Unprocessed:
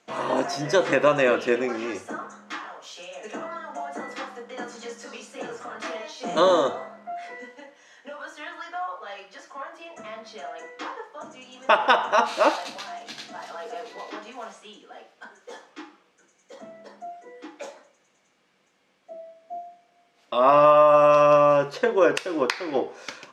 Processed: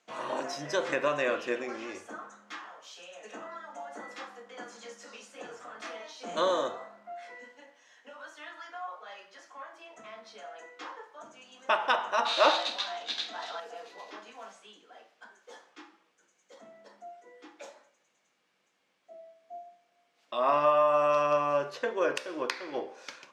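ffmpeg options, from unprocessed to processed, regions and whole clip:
-filter_complex "[0:a]asettb=1/sr,asplit=3[a][b][c];[a]atrim=end=12.254[d];[b]atrim=start=12.25:end=13.6,asetpts=PTS-STARTPTS,afade=t=in:d=0.004:c=qsin,afade=t=out:st=1.346:d=0.004:c=qsin,equalizer=f=3.7k:t=o:w=0.31:g=11.5,acontrast=77,highpass=280,lowpass=6.2k[e];[c]atrim=start=13.596[f];[d][e]acrossfade=d=0.004:c1=hsin:c2=qsin[g];[g][f]acrossfade=d=0.004:c1=qsin:c2=hsin,lowshelf=f=410:g=-6.5,bandreject=f=65:t=h:w=4,bandreject=f=130:t=h:w=4,bandreject=f=195:t=h:w=4,bandreject=f=260:t=h:w=4,bandreject=f=325:t=h:w=4,bandreject=f=390:t=h:w=4,bandreject=f=455:t=h:w=4,bandreject=f=520:t=h:w=4,bandreject=f=585:t=h:w=4,bandreject=f=650:t=h:w=4,bandreject=f=715:t=h:w=4,bandreject=f=780:t=h:w=4,bandreject=f=845:t=h:w=4,bandreject=f=910:t=h:w=4,bandreject=f=975:t=h:w=4,bandreject=f=1.04k:t=h:w=4,bandreject=f=1.105k:t=h:w=4,bandreject=f=1.17k:t=h:w=4,bandreject=f=1.235k:t=h:w=4,bandreject=f=1.3k:t=h:w=4,bandreject=f=1.365k:t=h:w=4,bandreject=f=1.43k:t=h:w=4,bandreject=f=1.495k:t=h:w=4,bandreject=f=1.56k:t=h:w=4,bandreject=f=1.625k:t=h:w=4,bandreject=f=1.69k:t=h:w=4,bandreject=f=1.755k:t=h:w=4,bandreject=f=1.82k:t=h:w=4,bandreject=f=1.885k:t=h:w=4,bandreject=f=1.95k:t=h:w=4,bandreject=f=2.015k:t=h:w=4,bandreject=f=2.08k:t=h:w=4,bandreject=f=2.145k:t=h:w=4,bandreject=f=2.21k:t=h:w=4,bandreject=f=2.275k:t=h:w=4,bandreject=f=2.34k:t=h:w=4,bandreject=f=2.405k:t=h:w=4,bandreject=f=2.47k:t=h:w=4,volume=-6.5dB"

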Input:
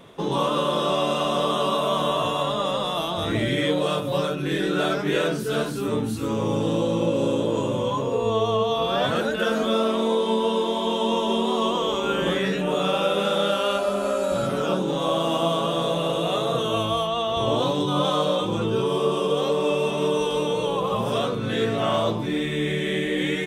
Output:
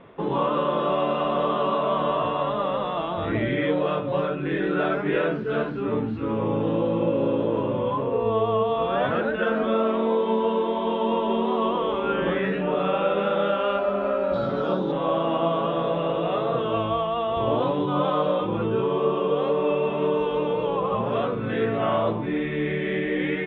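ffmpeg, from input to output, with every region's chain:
-filter_complex "[0:a]asettb=1/sr,asplit=3[a][b][c];[a]atrim=end=14.334[d];[b]atrim=start=14.33:end=14.92,asetpts=PTS-STARTPTS,afade=t=in:d=0.004:c=qsin,afade=t=out:st=0.586:d=0.004:c=qsin,highshelf=f=3.4k:t=q:w=3:g=8.5,acrusher=bits=8:mode=log:mix=0:aa=0.000001[e];[c]atrim=start=14.916[f];[d][e]acrossfade=d=0.004:c1=hsin:c2=qsin[g];[g][f]acrossfade=d=0.004:c1=qsin:c2=hsin,lowpass=f=2.5k:w=0.5412,lowpass=f=2.5k:w=1.3066,equalizer=f=140:w=1.5:g=-2.5"

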